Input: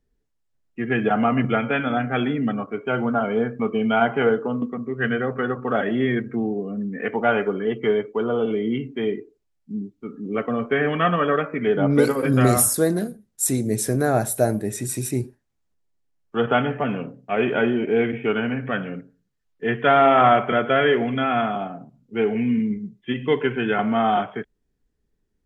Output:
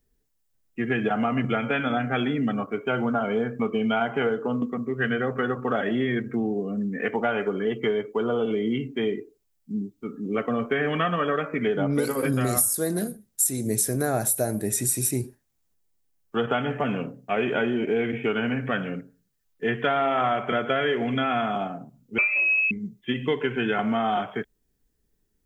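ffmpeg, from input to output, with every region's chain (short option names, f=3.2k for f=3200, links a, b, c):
-filter_complex "[0:a]asettb=1/sr,asplit=3[a][b][c];[a]atrim=end=22.184[d];[b]atrim=start=22.18:end=22.71,asetpts=PTS-STARTPTS,afade=t=in:d=0.004:c=qsin,afade=t=out:st=0.526:d=0.004:c=qsin,aecho=1:1:4.5:0.69,atrim=end_sample=23373,lowpass=f=2.4k:t=q:w=0.5098,lowpass=f=2.4k:t=q:w=0.6013,lowpass=f=2.4k:t=q:w=0.9,lowpass=f=2.4k:t=q:w=2.563,afreqshift=-2800[e];[c]atrim=start=22.706[f];[d][e]acrossfade=d=0.004:c1=hsin:c2=qsin[g];[g][f]acrossfade=d=0.004:c1=qsin:c2=hsin,aemphasis=mode=production:type=50kf,acompressor=threshold=-21dB:ratio=5"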